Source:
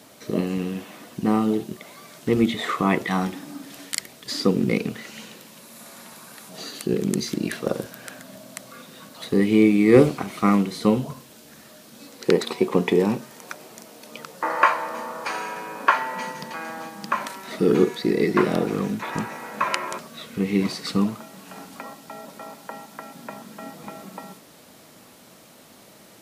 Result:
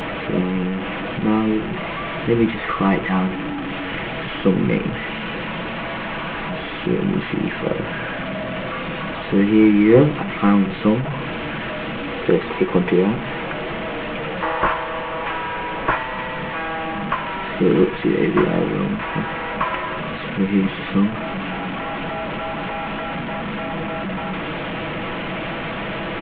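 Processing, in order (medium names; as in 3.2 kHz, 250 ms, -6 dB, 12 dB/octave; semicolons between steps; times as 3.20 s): one-bit delta coder 16 kbps, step -23 dBFS; bass shelf 110 Hz +5.5 dB; comb 6.1 ms, depth 37%; in parallel at -7 dB: saturation -12 dBFS, distortion -13 dB; on the sum: trim -1 dB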